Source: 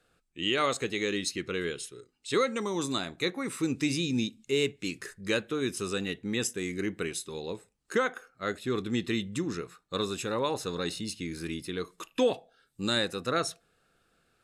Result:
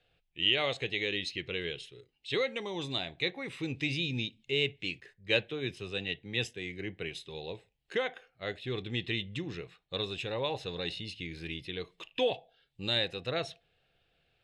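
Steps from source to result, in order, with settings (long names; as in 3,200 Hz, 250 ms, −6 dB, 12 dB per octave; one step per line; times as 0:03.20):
drawn EQ curve 140 Hz 0 dB, 220 Hz −11 dB, 750 Hz 0 dB, 1,300 Hz −14 dB, 1,900 Hz −1 dB, 3,100 Hz +5 dB, 7,000 Hz −17 dB, 13,000 Hz −23 dB
0:05.00–0:07.15: multiband upward and downward expander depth 70%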